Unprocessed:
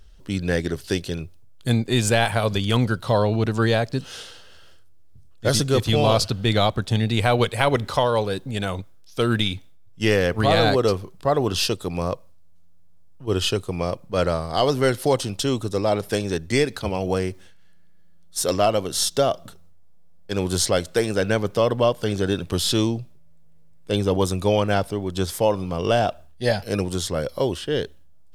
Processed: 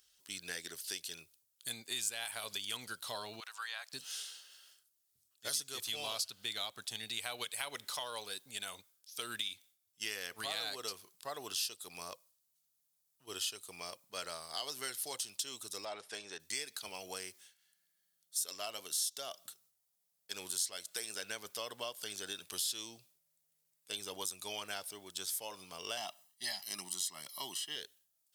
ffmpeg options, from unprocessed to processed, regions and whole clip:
-filter_complex "[0:a]asettb=1/sr,asplit=3[a][b][c];[a]atrim=end=3.404[d];[b]atrim=start=3.4:end=3.93,asetpts=PTS-STARTPTS,afade=t=in:d=0.004:c=qsin,afade=t=out:st=0.526:d=0.004:c=qsin,acrossover=split=4000[e][f];[f]acompressor=threshold=-42dB:ratio=4:attack=1:release=60[g];[e][g]amix=inputs=2:normalize=0,highpass=f=1k:w=0.5412,highpass=f=1k:w=1.3066,tiltshelf=f=1.4k:g=6[h];[c]atrim=start=3.926[i];[d][h]acrossfade=d=0.004:c1=hsin:c2=qsin[j];[j][i]acrossfade=d=0.004:c1=qsin:c2=hsin,asettb=1/sr,asplit=3[k][l][m];[k]atrim=end=15.854[n];[l]atrim=start=15.85:end=16.4,asetpts=PTS-STARTPTS,afade=t=in:d=0.004:c=qsin,afade=t=out:st=0.546:d=0.004:c=qsin,lowpass=f=10k:w=0.5412,lowpass=f=10k:w=1.3066,asplit=2[o][p];[p]highpass=f=720:p=1,volume=8dB,asoftclip=type=tanh:threshold=-9.5dB[q];[o][q]amix=inputs=2:normalize=0,lowpass=f=1.2k:p=1,volume=-6dB[r];[m]atrim=start=16.396[s];[n][r]acrossfade=d=0.004:c1=hsin:c2=qsin[t];[t][s]acrossfade=d=0.004:c1=qsin:c2=hsin,asettb=1/sr,asplit=3[u][v][w];[u]atrim=end=25.974[x];[v]atrim=start=25.97:end=27.76,asetpts=PTS-STARTPTS,afade=t=in:d=0.004:c=qsin,afade=t=out:st=1.786:d=0.004:c=qsin,highpass=f=140:w=0.5412,highpass=f=140:w=1.3066,aecho=1:1:1:0.99,atrim=end_sample=78939[y];[w]atrim=start=27.756[z];[x][y]acrossfade=d=0.004:c1=hsin:c2=qsin[aa];[aa][z]acrossfade=d=0.004:c1=qsin:c2=hsin,aderivative,bandreject=f=520:w=12,acompressor=threshold=-38dB:ratio=2.5"

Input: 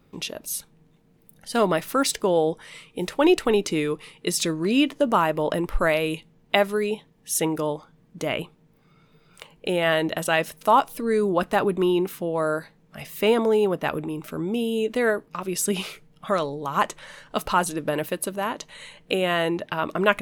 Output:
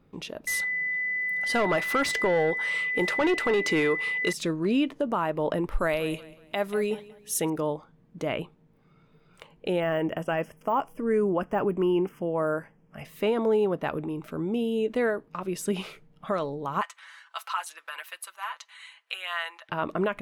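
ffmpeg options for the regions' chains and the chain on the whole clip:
-filter_complex "[0:a]asettb=1/sr,asplit=3[a][b][c];[a]atrim=end=0.474[d];[b]atrim=start=0.47:end=4.33,asetpts=PTS-STARTPTS,afade=t=in:d=0.004:c=qsin,afade=t=out:st=3.856:d=0.004:c=qsin,deesser=0.35,asplit=2[e][f];[f]highpass=f=720:p=1,volume=19dB,asoftclip=type=tanh:threshold=-8.5dB[g];[e][g]amix=inputs=2:normalize=0,lowpass=f=7.7k:p=1,volume=-6dB,aeval=exprs='val(0)+0.0891*sin(2*PI*2000*n/s)':c=same[h];[c]atrim=start=4.326[i];[d][h]acrossfade=d=0.004:c1=hsin:c2=qsin[j];[j][i]acrossfade=d=0.004:c1=qsin:c2=hsin,asettb=1/sr,asplit=3[k][l][m];[k]atrim=end=5.714[n];[l]atrim=start=5.71:end=7.5,asetpts=PTS-STARTPTS,afade=t=in:d=0.004:c=qsin,afade=t=out:st=1.786:d=0.004:c=qsin,highshelf=f=5.1k:g=10,aecho=1:1:185|370|555:0.1|0.035|0.0123,atrim=end_sample=78939[o];[m]atrim=start=7.496[p];[n][o]acrossfade=d=0.004:c1=hsin:c2=qsin[q];[q][p]acrossfade=d=0.004:c1=qsin:c2=hsin,asettb=1/sr,asplit=3[r][s][t];[r]atrim=end=9.804[u];[s]atrim=start=9.8:end=13.05,asetpts=PTS-STARTPTS,afade=t=in:d=0.004:c=qsin,afade=t=out:st=3.246:d=0.004:c=qsin,deesser=0.8,asuperstop=centerf=4000:order=8:qfactor=2.5[v];[t]atrim=start=13.046[w];[u][v]acrossfade=d=0.004:c1=hsin:c2=qsin[x];[x][w]acrossfade=d=0.004:c1=qsin:c2=hsin,asettb=1/sr,asplit=3[y][z][aa];[y]atrim=end=16.814[ab];[z]atrim=start=16.81:end=19.69,asetpts=PTS-STARTPTS,afade=t=in:d=0.004:c=qsin,afade=t=out:st=2.876:d=0.004:c=qsin,highpass=f=1.1k:w=0.5412,highpass=f=1.1k:w=1.3066,aecho=1:1:6:0.68,atrim=end_sample=127008[ac];[aa]atrim=start=19.686[ad];[ab][ac]acrossfade=d=0.004:c1=hsin:c2=qsin[ae];[ae][ad]acrossfade=d=0.004:c1=qsin:c2=hsin,highshelf=f=3.3k:g=-11,alimiter=limit=-14.5dB:level=0:latency=1:release=180,volume=-2dB"

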